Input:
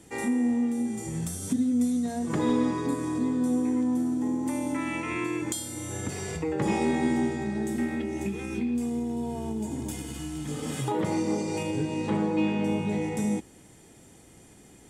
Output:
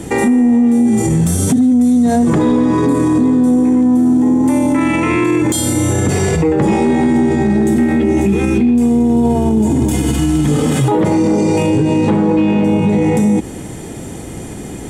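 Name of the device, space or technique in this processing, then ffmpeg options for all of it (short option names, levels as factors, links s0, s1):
mastering chain: -af "equalizer=f=5000:t=o:w=0.34:g=-2.5,acompressor=threshold=0.0398:ratio=2.5,asoftclip=type=tanh:threshold=0.0944,tiltshelf=f=970:g=3.5,asoftclip=type=hard:threshold=0.0841,alimiter=level_in=28.2:limit=0.891:release=50:level=0:latency=1,volume=0.531"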